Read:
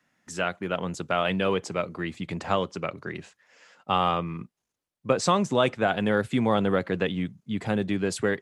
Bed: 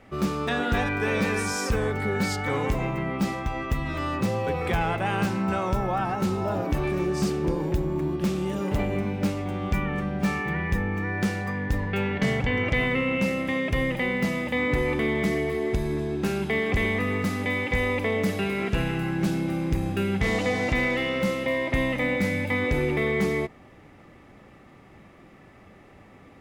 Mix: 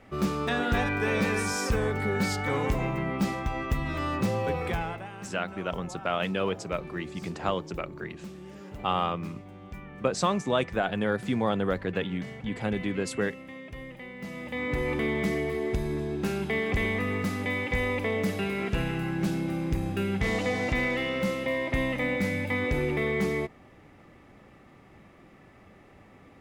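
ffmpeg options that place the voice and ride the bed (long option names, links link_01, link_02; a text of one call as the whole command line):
ffmpeg -i stem1.wav -i stem2.wav -filter_complex "[0:a]adelay=4950,volume=-3.5dB[link_01];[1:a]volume=12dB,afade=type=out:start_time=4.5:duration=0.6:silence=0.177828,afade=type=in:start_time=14.16:duration=0.8:silence=0.211349[link_02];[link_01][link_02]amix=inputs=2:normalize=0" out.wav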